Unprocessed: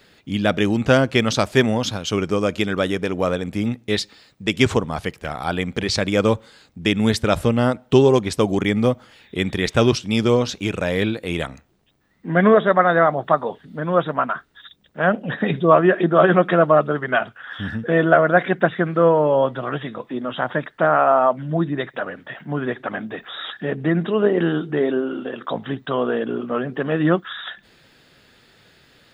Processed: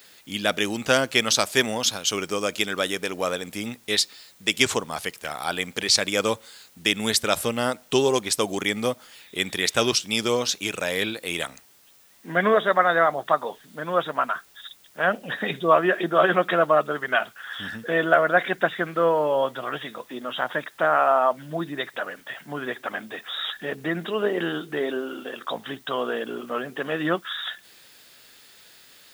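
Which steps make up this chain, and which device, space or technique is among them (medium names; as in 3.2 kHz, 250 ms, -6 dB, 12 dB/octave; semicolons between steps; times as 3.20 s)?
turntable without a phono preamp (RIAA curve recording; white noise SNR 32 dB); trim -3 dB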